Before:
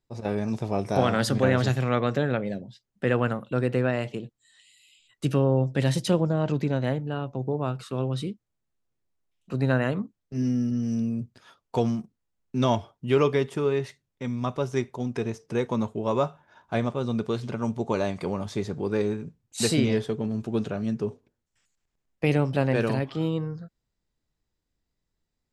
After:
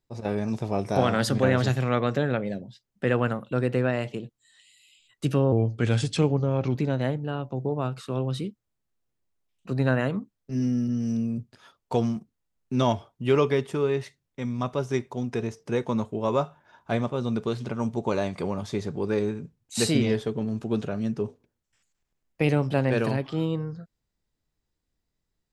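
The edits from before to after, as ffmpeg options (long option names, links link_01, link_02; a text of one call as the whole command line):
ffmpeg -i in.wav -filter_complex "[0:a]asplit=3[link_01][link_02][link_03];[link_01]atrim=end=5.524[link_04];[link_02]atrim=start=5.52:end=6.58,asetpts=PTS-STARTPTS,asetrate=37926,aresample=44100[link_05];[link_03]atrim=start=6.576[link_06];[link_04][link_05]acrossfade=duration=0.004:curve1=hsin:curve2=hsin[link_07];[link_07][link_06]acrossfade=duration=0.004:curve1=hsin:curve2=hsin" out.wav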